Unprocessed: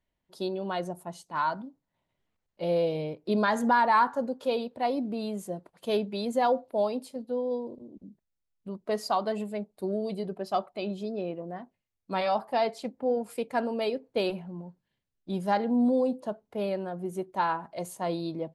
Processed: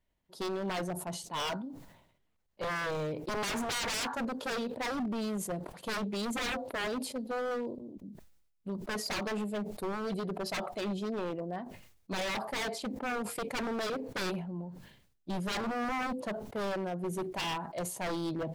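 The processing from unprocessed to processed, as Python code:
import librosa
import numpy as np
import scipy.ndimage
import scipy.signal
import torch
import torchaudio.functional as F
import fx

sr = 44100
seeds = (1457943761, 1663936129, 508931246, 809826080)

y = fx.low_shelf(x, sr, hz=72.0, db=4.0)
y = 10.0 ** (-29.0 / 20.0) * (np.abs((y / 10.0 ** (-29.0 / 20.0) + 3.0) % 4.0 - 2.0) - 1.0)
y = fx.sustainer(y, sr, db_per_s=68.0)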